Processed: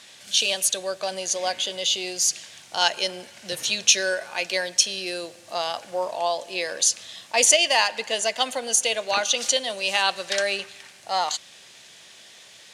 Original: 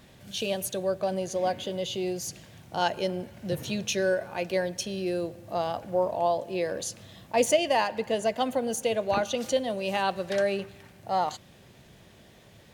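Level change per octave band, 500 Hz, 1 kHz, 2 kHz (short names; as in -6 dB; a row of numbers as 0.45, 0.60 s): -1.5, +2.0, +9.0 dB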